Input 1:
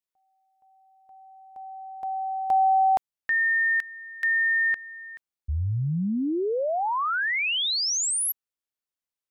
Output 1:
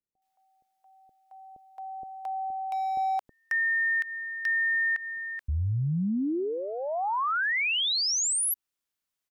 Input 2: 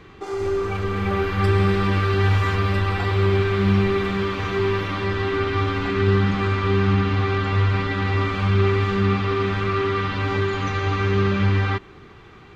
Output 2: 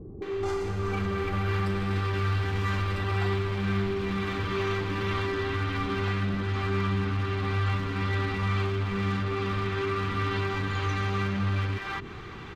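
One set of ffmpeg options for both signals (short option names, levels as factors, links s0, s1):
-filter_complex "[0:a]acompressor=threshold=0.0224:ratio=3:attack=3.2:release=103:knee=6:detection=rms,asoftclip=type=hard:threshold=0.0398,acrossover=split=530[s0][s1];[s1]adelay=220[s2];[s0][s2]amix=inputs=2:normalize=0,volume=1.88"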